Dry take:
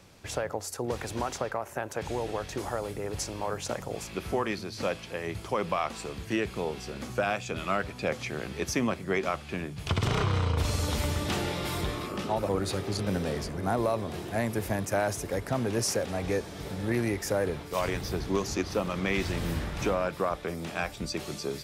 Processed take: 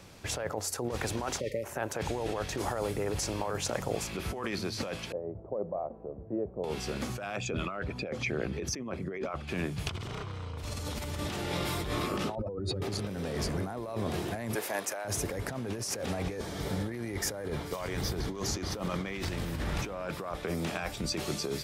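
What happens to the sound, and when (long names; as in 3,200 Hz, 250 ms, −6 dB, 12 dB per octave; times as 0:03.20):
0:01.40–0:01.64: time-frequency box erased 620–1,800 Hz
0:05.12–0:06.64: transistor ladder low-pass 680 Hz, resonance 55%
0:07.36–0:09.48: spectral envelope exaggerated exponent 1.5
0:12.35–0:12.82: expanding power law on the bin magnitudes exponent 2
0:14.55–0:15.05: high-pass filter 520 Hz
0:16.37–0:19.15: notch filter 2,600 Hz
whole clip: compressor whose output falls as the input rises −34 dBFS, ratio −1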